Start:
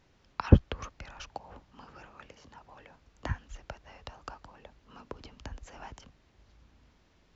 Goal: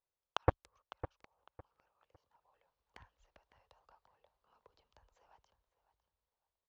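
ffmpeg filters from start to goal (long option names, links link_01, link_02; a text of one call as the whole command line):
ffmpeg -i in.wav -filter_complex "[0:a]equalizer=frequency=250:width_type=o:width=1:gain=-10,equalizer=frequency=500:width_type=o:width=1:gain=9,equalizer=frequency=1000:width_type=o:width=1:gain=9,equalizer=frequency=4000:width_type=o:width=1:gain=8,atempo=1.1,asplit=2[link_01][link_02];[link_02]asoftclip=type=tanh:threshold=-13dB,volume=-3.5dB[link_03];[link_01][link_03]amix=inputs=2:normalize=0,aeval=exprs='0.891*(cos(1*acos(clip(val(0)/0.891,-1,1)))-cos(1*PI/2))+0.0631*(cos(2*acos(clip(val(0)/0.891,-1,1)))-cos(2*PI/2))+0.447*(cos(3*acos(clip(val(0)/0.891,-1,1)))-cos(3*PI/2))+0.0158*(cos(4*acos(clip(val(0)/0.891,-1,1)))-cos(4*PI/2))+0.0891*(cos(5*acos(clip(val(0)/0.891,-1,1)))-cos(5*PI/2))':channel_layout=same,dynaudnorm=framelen=400:gausssize=7:maxgain=8dB,alimiter=limit=-16dB:level=0:latency=1:release=15,asplit=2[link_04][link_05];[link_05]adelay=555,lowpass=frequency=3600:poles=1,volume=-13.5dB,asplit=2[link_06][link_07];[link_07]adelay=555,lowpass=frequency=3600:poles=1,volume=0.25,asplit=2[link_08][link_09];[link_09]adelay=555,lowpass=frequency=3600:poles=1,volume=0.25[link_10];[link_06][link_08][link_10]amix=inputs=3:normalize=0[link_11];[link_04][link_11]amix=inputs=2:normalize=0,volume=5.5dB" out.wav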